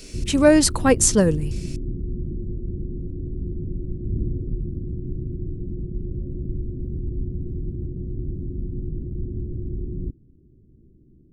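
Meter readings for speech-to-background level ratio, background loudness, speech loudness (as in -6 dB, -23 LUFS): 13.5 dB, -31.0 LUFS, -17.5 LUFS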